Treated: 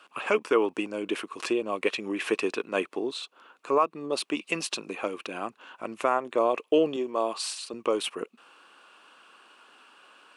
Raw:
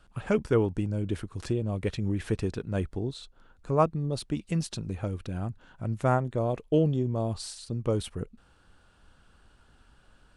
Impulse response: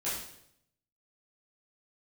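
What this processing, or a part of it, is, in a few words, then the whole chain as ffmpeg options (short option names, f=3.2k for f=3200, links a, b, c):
laptop speaker: -filter_complex "[0:a]highpass=f=310:w=0.5412,highpass=f=310:w=1.3066,equalizer=f=1.1k:t=o:w=0.37:g=10,equalizer=f=2.6k:t=o:w=0.51:g=11.5,alimiter=limit=-17.5dB:level=0:latency=1:release=201,asettb=1/sr,asplit=3[a][b][c];[a]atrim=end=6.964[d];[b]atrim=start=6.96:end=7.74,asetpts=PTS-STARTPTS,afade=t=in:d=0.004:c=qsin,afade=t=out:st=0.776:d=0.004:c=qsin,highpass=f=310:p=1[e];[c]atrim=start=7.736[f];[d][e]acrossfade=d=0.004:c1=hsin:c2=qsin[g];[g][f]acrossfade=d=0.004:c1=qsin:c2=hsin,volume=5.5dB"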